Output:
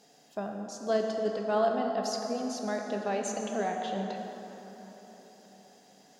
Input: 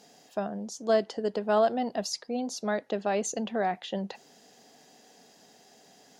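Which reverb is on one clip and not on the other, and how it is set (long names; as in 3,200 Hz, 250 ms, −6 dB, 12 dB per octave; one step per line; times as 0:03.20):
dense smooth reverb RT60 4.2 s, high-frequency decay 0.5×, DRR 1.5 dB
level −4.5 dB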